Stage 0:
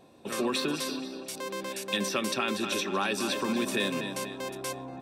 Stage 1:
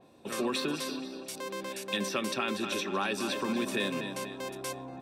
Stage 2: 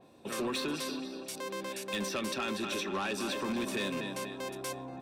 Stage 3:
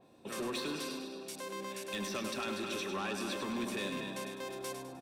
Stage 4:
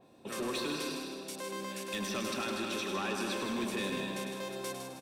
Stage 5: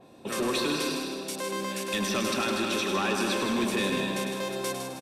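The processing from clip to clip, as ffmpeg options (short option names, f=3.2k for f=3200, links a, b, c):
-af "adynamicequalizer=threshold=0.00708:dfrequency=4000:dqfactor=0.7:tfrequency=4000:tqfactor=0.7:attack=5:release=100:ratio=0.375:range=1.5:mode=cutabove:tftype=highshelf,volume=-2dB"
-af "asoftclip=type=tanh:threshold=-27.5dB"
-af "aecho=1:1:102|204|306|408|510:0.422|0.181|0.078|0.0335|0.0144,volume=-4dB"
-af "aecho=1:1:159|318|477|636|795:0.447|0.192|0.0826|0.0355|0.0153,volume=1.5dB"
-af "aresample=32000,aresample=44100,volume=7.5dB"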